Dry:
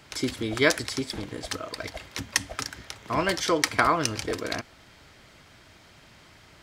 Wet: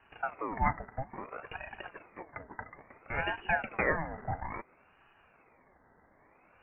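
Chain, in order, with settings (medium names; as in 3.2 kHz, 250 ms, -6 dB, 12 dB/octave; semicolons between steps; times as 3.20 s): rattle on loud lows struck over -40 dBFS, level -21 dBFS; rippled Chebyshev low-pass 1.7 kHz, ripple 9 dB; ring modulator with a swept carrier 790 Hz, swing 60%, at 0.59 Hz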